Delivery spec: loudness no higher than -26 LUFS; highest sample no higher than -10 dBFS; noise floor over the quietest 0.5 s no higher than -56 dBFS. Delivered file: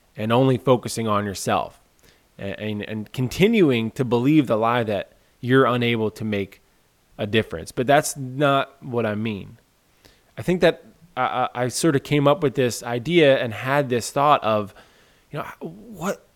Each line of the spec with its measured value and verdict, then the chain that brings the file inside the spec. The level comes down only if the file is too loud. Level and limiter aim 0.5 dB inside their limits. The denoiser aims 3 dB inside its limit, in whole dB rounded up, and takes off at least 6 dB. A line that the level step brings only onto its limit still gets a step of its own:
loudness -21.5 LUFS: fail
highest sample -2.5 dBFS: fail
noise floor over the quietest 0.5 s -61 dBFS: OK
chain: gain -5 dB; limiter -10.5 dBFS

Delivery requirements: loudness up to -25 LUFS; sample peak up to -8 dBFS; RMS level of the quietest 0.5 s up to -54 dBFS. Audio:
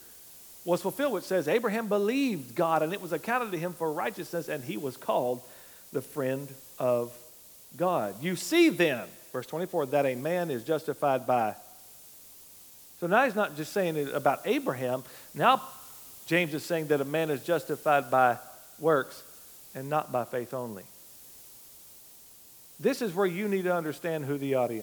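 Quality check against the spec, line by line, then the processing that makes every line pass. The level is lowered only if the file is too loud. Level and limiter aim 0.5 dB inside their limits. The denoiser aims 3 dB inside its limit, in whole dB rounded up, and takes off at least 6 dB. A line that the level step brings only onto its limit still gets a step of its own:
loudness -29.0 LUFS: OK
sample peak -8.5 dBFS: OK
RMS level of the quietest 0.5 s -53 dBFS: fail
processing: denoiser 6 dB, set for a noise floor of -53 dBFS

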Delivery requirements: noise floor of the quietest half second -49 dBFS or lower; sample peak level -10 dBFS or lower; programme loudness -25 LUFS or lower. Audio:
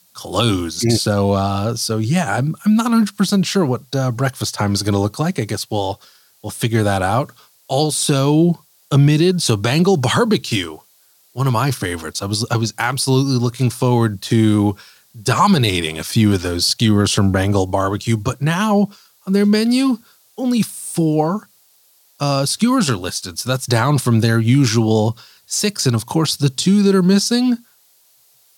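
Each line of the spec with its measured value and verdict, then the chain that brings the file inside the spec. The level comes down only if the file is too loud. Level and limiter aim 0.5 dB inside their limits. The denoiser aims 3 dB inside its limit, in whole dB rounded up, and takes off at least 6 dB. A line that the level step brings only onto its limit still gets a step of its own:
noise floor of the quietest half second -55 dBFS: OK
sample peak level -4.0 dBFS: fail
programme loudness -17.0 LUFS: fail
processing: gain -8.5 dB

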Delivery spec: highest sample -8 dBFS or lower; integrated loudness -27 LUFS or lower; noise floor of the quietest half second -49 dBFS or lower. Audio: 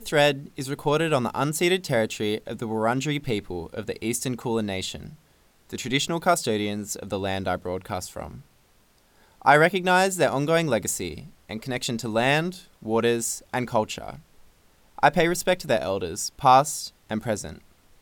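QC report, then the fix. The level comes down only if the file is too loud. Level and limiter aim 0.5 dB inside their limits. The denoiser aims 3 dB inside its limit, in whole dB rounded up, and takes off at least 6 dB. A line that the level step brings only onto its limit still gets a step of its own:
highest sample -5.0 dBFS: fail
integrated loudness -24.5 LUFS: fail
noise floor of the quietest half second -60 dBFS: OK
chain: gain -3 dB; limiter -8.5 dBFS

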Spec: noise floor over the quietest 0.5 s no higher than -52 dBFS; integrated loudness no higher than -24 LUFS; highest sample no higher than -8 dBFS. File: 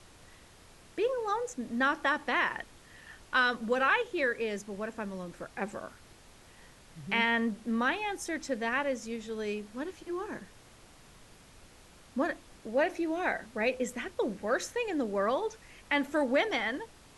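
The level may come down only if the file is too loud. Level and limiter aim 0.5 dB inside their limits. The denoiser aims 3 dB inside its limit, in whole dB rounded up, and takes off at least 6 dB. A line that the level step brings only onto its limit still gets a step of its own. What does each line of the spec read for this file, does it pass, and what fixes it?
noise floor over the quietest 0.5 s -56 dBFS: OK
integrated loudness -31.5 LUFS: OK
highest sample -14.5 dBFS: OK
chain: none

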